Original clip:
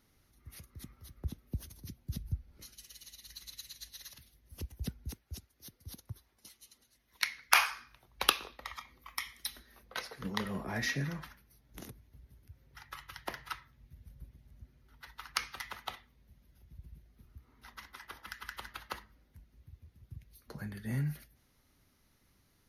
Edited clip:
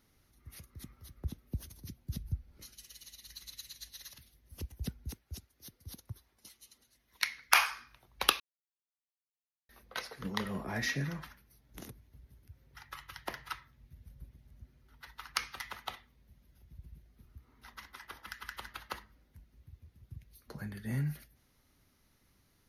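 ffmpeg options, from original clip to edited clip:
-filter_complex "[0:a]asplit=3[a][b][c];[a]atrim=end=8.4,asetpts=PTS-STARTPTS,afade=t=out:st=8.396:d=0.004:c=hsin[d];[b]atrim=start=8.4:end=9.69,asetpts=PTS-STARTPTS,volume=0[e];[c]atrim=start=9.69,asetpts=PTS-STARTPTS,afade=t=in:d=0.004:c=hsin[f];[d][e][f]concat=n=3:v=0:a=1"

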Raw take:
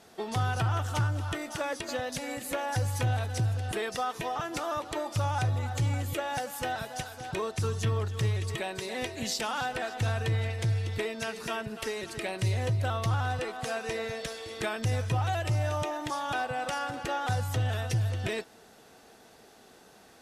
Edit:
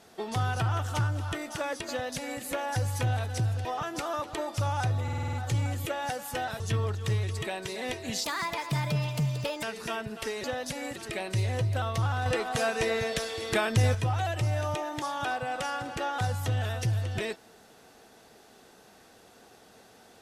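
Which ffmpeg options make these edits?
-filter_complex "[0:a]asplit=15[a][b][c][d][e][f][g][h][i][j][k][l][m][n][o];[a]atrim=end=3.652[p];[b]atrim=start=4.228:end=5.662[q];[c]atrim=start=5.608:end=5.662[r];[d]atrim=start=5.608:end=5.662[s];[e]atrim=start=5.608:end=5.662[t];[f]atrim=start=5.608:end=5.662[u];[g]atrim=start=5.608:end=5.662[v];[h]atrim=start=5.608:end=6.882[w];[i]atrim=start=7.728:end=9.374[x];[j]atrim=start=9.37:end=11.23,asetpts=PTS-STARTPTS,asetrate=59094,aresample=44100,atrim=end_sample=61213,asetpts=PTS-STARTPTS[y];[k]atrim=start=11.226:end=12.042[z];[l]atrim=start=1.898:end=2.422[aa];[m]atrim=start=12.038:end=13.342[ab];[n]atrim=start=13.338:end=15.032,asetpts=PTS-STARTPTS,volume=5.5dB[ac];[o]atrim=start=15.028[ad];[p][q]acrossfade=d=0.004:c1=hsin:c2=hsin[ae];[ae][r]acrossfade=d=0.004:c1=hsin:c2=hsin[af];[af][s]acrossfade=d=0.004:c1=hsin:c2=hsin[ag];[ag][t]acrossfade=d=0.004:c1=hsin:c2=hsin[ah];[ah][u]acrossfade=d=0.004:c1=hsin:c2=hsin[ai];[ai][v]acrossfade=d=0.004:c1=hsin:c2=hsin[aj];[aj][w]acrossfade=d=0.004:c1=hsin:c2=hsin[ak];[ak][x]acrossfade=d=0.004:c1=hsin:c2=hsin[al];[al][y]acrossfade=d=0.004:c1=hsin:c2=hsin[am];[am][z]acrossfade=d=0.004:c1=hsin:c2=hsin[an];[an][aa]acrossfade=d=0.004:c1=hsin:c2=hsin[ao];[ao][ab]acrossfade=d=0.004:c1=hsin:c2=hsin[ap];[ap][ac]acrossfade=d=0.004:c1=hsin:c2=hsin[aq];[aq][ad]acrossfade=d=0.004:c1=hsin:c2=hsin"

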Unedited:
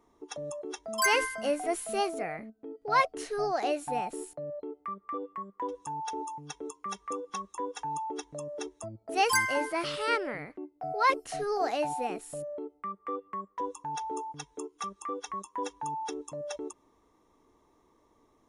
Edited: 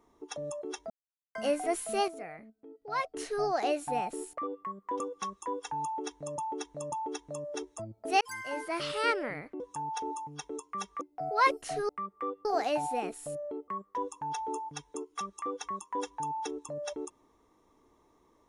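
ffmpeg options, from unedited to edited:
-filter_complex "[0:a]asplit=15[a][b][c][d][e][f][g][h][i][j][k][l][m][n][o];[a]atrim=end=0.9,asetpts=PTS-STARTPTS,afade=t=out:st=0.896:d=0.004:c=hsin[p];[b]atrim=start=0.9:end=1.35,asetpts=PTS-STARTPTS,volume=0[q];[c]atrim=start=1.35:end=2.082,asetpts=PTS-STARTPTS,afade=t=in:d=0.004:c=hsin[r];[d]atrim=start=2.078:end=3.142,asetpts=PTS-STARTPTS,volume=-8dB[s];[e]atrim=start=3.138:end=4.382[t];[f]atrim=start=5.088:end=5.712[u];[g]atrim=start=7.118:end=8.502[v];[h]atrim=start=7.958:end=8.502[w];[i]atrim=start=7.958:end=9.25,asetpts=PTS-STARTPTS,afade=t=out:st=1.288:d=0.004:c=hsin[x];[j]atrim=start=9.25:end=10.642,asetpts=PTS-STARTPTS,afade=t=in:d=0.71[y];[k]atrim=start=5.708:end=7.122[z];[l]atrim=start=10.638:end=11.522[aa];[m]atrim=start=12.748:end=13.312[ab];[n]atrim=start=11.518:end=12.752[ac];[o]atrim=start=13.308[ad];[p][q][r]concat=n=3:v=0:a=1[ae];[ae][s]acrossfade=d=0.004:c1=hsin:c2=hsin[af];[af][t]acrossfade=d=0.004:c1=hsin:c2=hsin[ag];[ag][u]acrossfade=d=0.004:c1=hsin:c2=hsin[ah];[ah][v]acrossfade=d=0.004:c1=hsin:c2=hsin[ai];[ai][w]acrossfade=d=0.004:c1=hsin:c2=hsin[aj];[x][y]concat=n=2:v=0:a=1[ak];[aj][ak]acrossfade=d=0.004:c1=hsin:c2=hsin[al];[al][z]acrossfade=d=0.004:c1=hsin:c2=hsin[am];[am][aa]acrossfade=d=0.004:c1=hsin:c2=hsin[an];[an][ab]acrossfade=d=0.004:c1=hsin:c2=hsin[ao];[ao][ac]acrossfade=d=0.004:c1=hsin:c2=hsin[ap];[ap][ad]acrossfade=d=0.004:c1=hsin:c2=hsin"

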